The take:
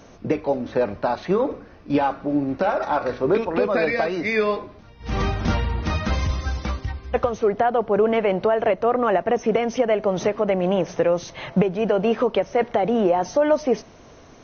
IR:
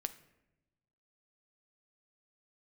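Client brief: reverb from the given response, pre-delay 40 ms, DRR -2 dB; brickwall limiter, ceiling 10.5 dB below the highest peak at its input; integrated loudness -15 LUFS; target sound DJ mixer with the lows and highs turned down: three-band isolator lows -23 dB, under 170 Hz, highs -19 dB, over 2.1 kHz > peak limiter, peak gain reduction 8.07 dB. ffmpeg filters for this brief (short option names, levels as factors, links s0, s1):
-filter_complex "[0:a]alimiter=limit=0.141:level=0:latency=1,asplit=2[s0][s1];[1:a]atrim=start_sample=2205,adelay=40[s2];[s1][s2]afir=irnorm=-1:irlink=0,volume=1.41[s3];[s0][s3]amix=inputs=2:normalize=0,acrossover=split=170 2100:gain=0.0708 1 0.112[s4][s5][s6];[s4][s5][s6]amix=inputs=3:normalize=0,volume=3.98,alimiter=limit=0.501:level=0:latency=1"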